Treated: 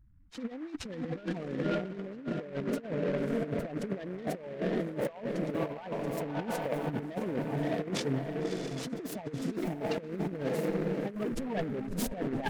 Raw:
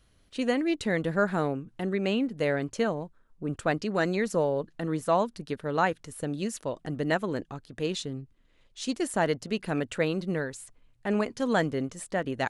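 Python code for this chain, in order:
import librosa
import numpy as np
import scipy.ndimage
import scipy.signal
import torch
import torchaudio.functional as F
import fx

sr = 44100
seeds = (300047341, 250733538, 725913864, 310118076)

y = fx.clip_1bit(x, sr, at=(11.15, 12.14))
y = fx.spec_topn(y, sr, count=8)
y = fx.echo_diffused(y, sr, ms=608, feedback_pct=50, wet_db=-7)
y = fx.over_compress(y, sr, threshold_db=-33.0, ratio=-0.5)
y = fx.noise_mod_delay(y, sr, seeds[0], noise_hz=1300.0, depth_ms=0.06)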